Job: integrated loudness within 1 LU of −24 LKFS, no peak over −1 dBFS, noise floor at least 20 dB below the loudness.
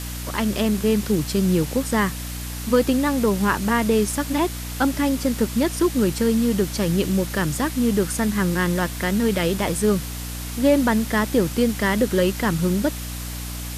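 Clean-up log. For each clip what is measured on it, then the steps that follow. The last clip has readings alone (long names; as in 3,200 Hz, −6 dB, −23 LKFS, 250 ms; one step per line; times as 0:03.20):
mains hum 60 Hz; hum harmonics up to 300 Hz; level of the hum −30 dBFS; background noise floor −31 dBFS; target noise floor −42 dBFS; integrated loudness −21.5 LKFS; sample peak −7.5 dBFS; target loudness −24.0 LKFS
→ hum removal 60 Hz, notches 5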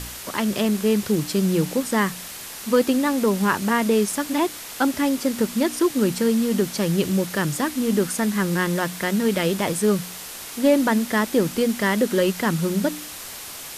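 mains hum none found; background noise floor −36 dBFS; target noise floor −42 dBFS
→ broadband denoise 6 dB, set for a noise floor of −36 dBFS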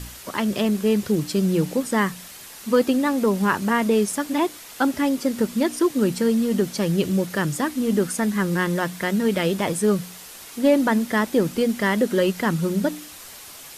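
background noise floor −41 dBFS; target noise floor −42 dBFS
→ broadband denoise 6 dB, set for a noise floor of −41 dBFS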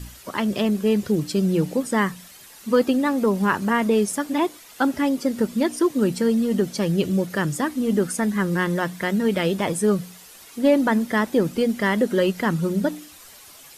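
background noise floor −46 dBFS; integrated loudness −22.0 LKFS; sample peak −8.0 dBFS; target loudness −24.0 LKFS
→ level −2 dB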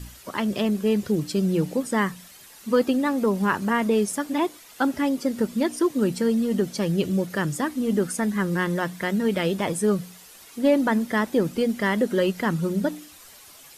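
integrated loudness −24.0 LKFS; sample peak −10.0 dBFS; background noise floor −48 dBFS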